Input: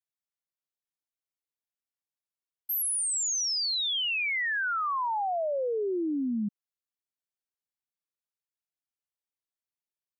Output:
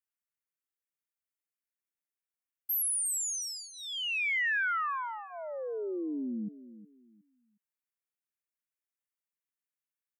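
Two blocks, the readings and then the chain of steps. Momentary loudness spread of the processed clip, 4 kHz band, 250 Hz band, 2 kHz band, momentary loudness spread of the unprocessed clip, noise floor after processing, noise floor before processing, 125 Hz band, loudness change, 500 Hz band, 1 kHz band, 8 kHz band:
13 LU, -9.0 dB, -5.5 dB, -0.5 dB, 6 LU, under -85 dBFS, under -85 dBFS, no reading, -4.0 dB, -7.5 dB, -6.0 dB, -3.5 dB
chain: high-pass 320 Hz 6 dB/octave; peaking EQ 720 Hz +8 dB 0.31 oct; static phaser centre 1.8 kHz, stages 4; on a send: feedback delay 363 ms, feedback 27%, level -15.5 dB

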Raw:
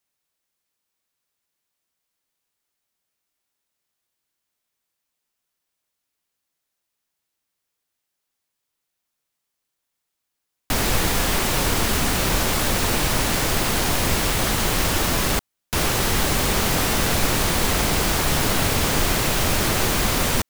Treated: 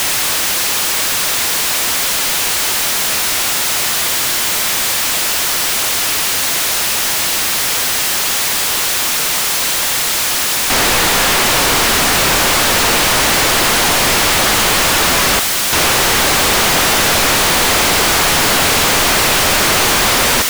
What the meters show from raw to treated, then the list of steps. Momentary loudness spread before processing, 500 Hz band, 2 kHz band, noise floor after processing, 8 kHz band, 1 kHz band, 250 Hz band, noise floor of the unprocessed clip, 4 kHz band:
1 LU, +8.0 dB, +12.5 dB, -16 dBFS, +13.5 dB, +11.0 dB, +4.0 dB, -80 dBFS, +13.5 dB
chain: jump at every zero crossing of -29.5 dBFS; overdrive pedal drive 34 dB, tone 7.8 kHz, clips at -5.5 dBFS

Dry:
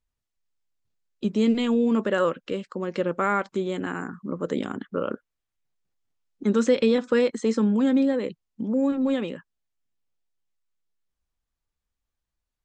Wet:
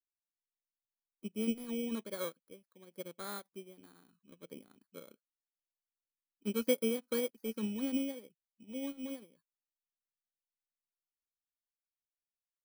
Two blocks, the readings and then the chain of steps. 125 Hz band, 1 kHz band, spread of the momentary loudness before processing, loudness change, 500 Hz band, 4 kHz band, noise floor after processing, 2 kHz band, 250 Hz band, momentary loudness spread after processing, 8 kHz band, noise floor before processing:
under -15 dB, -21.0 dB, 12 LU, -13.0 dB, -15.0 dB, -9.5 dB, under -85 dBFS, -16.0 dB, -15.5 dB, 21 LU, -3.5 dB, -84 dBFS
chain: bit-reversed sample order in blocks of 16 samples; upward expansion 2.5:1, over -32 dBFS; trim -8.5 dB

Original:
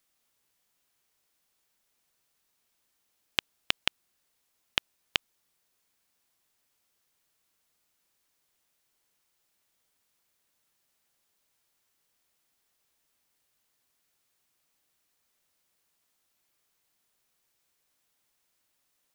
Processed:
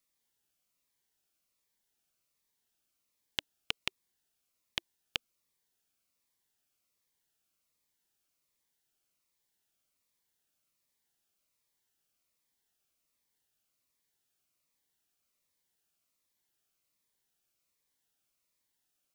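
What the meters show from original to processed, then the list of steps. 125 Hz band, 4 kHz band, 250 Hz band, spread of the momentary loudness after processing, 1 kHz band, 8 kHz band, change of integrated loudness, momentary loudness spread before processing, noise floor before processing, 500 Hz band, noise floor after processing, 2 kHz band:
-5.5 dB, -7.0 dB, -6.0 dB, 4 LU, -9.0 dB, -5.5 dB, -7.0 dB, 3 LU, -76 dBFS, -7.5 dB, -82 dBFS, -7.5 dB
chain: Shepard-style phaser falling 1.3 Hz; trim -5.5 dB

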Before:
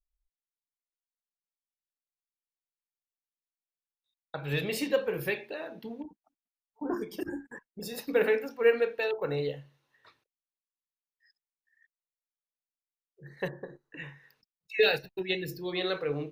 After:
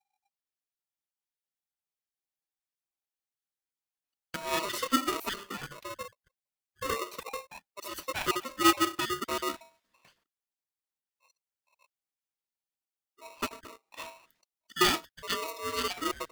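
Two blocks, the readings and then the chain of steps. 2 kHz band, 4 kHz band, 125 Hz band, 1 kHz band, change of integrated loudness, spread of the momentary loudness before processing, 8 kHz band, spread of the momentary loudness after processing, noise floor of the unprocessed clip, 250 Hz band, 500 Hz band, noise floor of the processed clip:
-1.5 dB, +4.5 dB, -9.0 dB, +11.0 dB, -0.5 dB, 19 LU, +13.0 dB, 18 LU, under -85 dBFS, +1.5 dB, -8.5 dB, under -85 dBFS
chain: random holes in the spectrogram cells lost 25%; polarity switched at an audio rate 800 Hz

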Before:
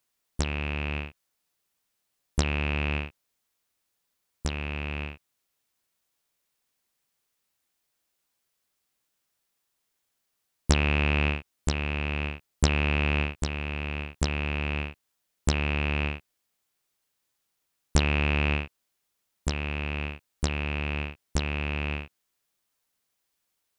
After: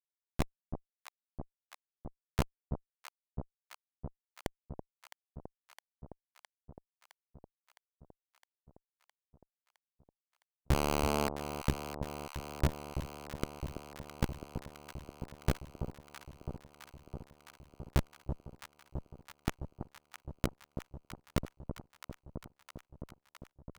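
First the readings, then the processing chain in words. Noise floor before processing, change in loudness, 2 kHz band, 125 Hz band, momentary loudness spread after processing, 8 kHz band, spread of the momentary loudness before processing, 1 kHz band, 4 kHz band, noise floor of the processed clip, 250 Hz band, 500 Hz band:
-79 dBFS, -11.0 dB, -17.0 dB, -9.5 dB, 20 LU, -10.0 dB, 11 LU, -5.0 dB, -12.5 dB, under -85 dBFS, -7.5 dB, -5.5 dB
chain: Schmitt trigger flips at -21 dBFS; echo whose repeats swap between lows and highs 331 ms, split 960 Hz, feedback 85%, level -8 dB; trim +8 dB

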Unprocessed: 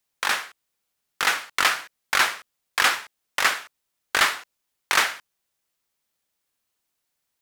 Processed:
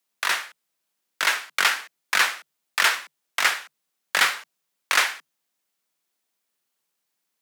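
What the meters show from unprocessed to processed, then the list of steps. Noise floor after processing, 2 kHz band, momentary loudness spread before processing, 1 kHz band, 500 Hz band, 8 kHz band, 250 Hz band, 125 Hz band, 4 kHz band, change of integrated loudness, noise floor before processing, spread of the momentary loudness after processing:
-79 dBFS, +0.5 dB, 11 LU, -1.5 dB, -2.5 dB, 0.0 dB, -5.0 dB, no reading, +0.5 dB, 0.0 dB, -79 dBFS, 11 LU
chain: frequency shift +140 Hz

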